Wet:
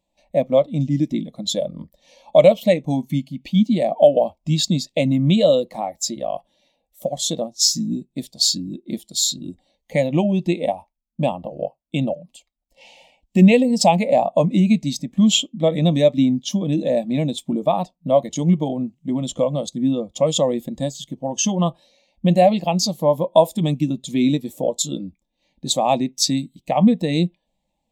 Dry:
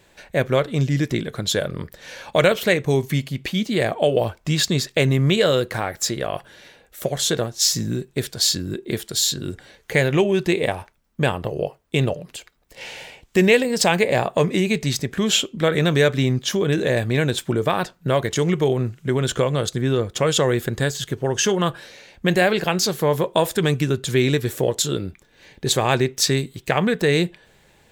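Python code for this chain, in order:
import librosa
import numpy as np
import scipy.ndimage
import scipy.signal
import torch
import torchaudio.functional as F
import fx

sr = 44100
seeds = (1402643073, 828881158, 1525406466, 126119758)

y = fx.fixed_phaser(x, sr, hz=410.0, stages=6)
y = fx.spectral_expand(y, sr, expansion=1.5)
y = F.gain(torch.from_numpy(y), 4.0).numpy()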